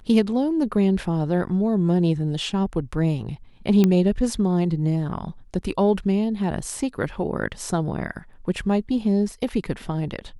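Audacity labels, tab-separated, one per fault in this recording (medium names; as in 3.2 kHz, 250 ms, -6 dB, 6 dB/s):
3.840000	3.840000	pop -7 dBFS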